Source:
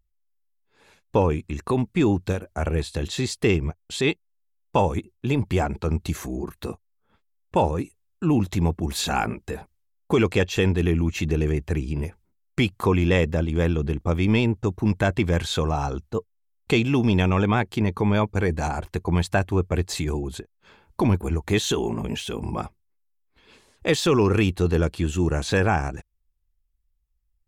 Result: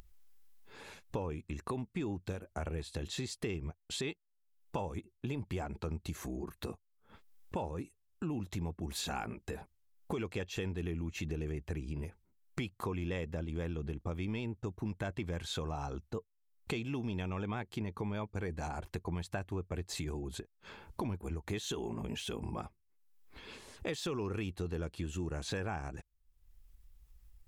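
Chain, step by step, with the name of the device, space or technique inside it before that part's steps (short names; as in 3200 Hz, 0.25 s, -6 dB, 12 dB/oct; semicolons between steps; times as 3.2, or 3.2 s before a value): upward and downward compression (upward compressor, threshold -35 dBFS; compressor 4:1, threshold -31 dBFS, peak gain reduction 13.5 dB); gain -5.5 dB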